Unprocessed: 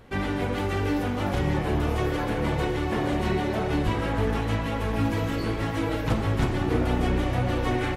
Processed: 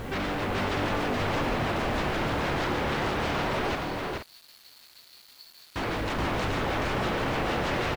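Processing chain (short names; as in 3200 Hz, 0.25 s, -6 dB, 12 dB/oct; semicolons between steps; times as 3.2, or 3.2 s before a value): sine folder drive 16 dB, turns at -11.5 dBFS; limiter -22.5 dBFS, peak gain reduction 11 dB; 3.75–5.76 band-pass 4400 Hz, Q 19; upward compressor, threshold -45 dBFS; air absorption 57 m; tapped delay 72/87/426/474 ms -19/-16.5/-3.5/-10 dB; bit-crush 8-bit; gain -4 dB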